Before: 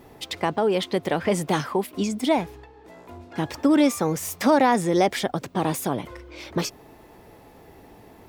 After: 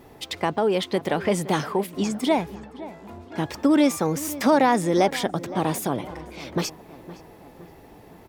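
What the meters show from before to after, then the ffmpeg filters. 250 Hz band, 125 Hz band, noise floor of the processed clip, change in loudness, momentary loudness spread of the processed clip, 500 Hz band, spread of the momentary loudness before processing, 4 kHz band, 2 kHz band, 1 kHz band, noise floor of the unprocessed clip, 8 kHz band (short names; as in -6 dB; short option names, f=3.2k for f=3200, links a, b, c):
0.0 dB, 0.0 dB, -48 dBFS, 0.0 dB, 19 LU, 0.0 dB, 13 LU, 0.0 dB, 0.0 dB, 0.0 dB, -50 dBFS, 0.0 dB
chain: -filter_complex "[0:a]asplit=2[a][b];[b]adelay=516,lowpass=f=2k:p=1,volume=-16dB,asplit=2[c][d];[d]adelay=516,lowpass=f=2k:p=1,volume=0.53,asplit=2[e][f];[f]adelay=516,lowpass=f=2k:p=1,volume=0.53,asplit=2[g][h];[h]adelay=516,lowpass=f=2k:p=1,volume=0.53,asplit=2[i][j];[j]adelay=516,lowpass=f=2k:p=1,volume=0.53[k];[a][c][e][g][i][k]amix=inputs=6:normalize=0"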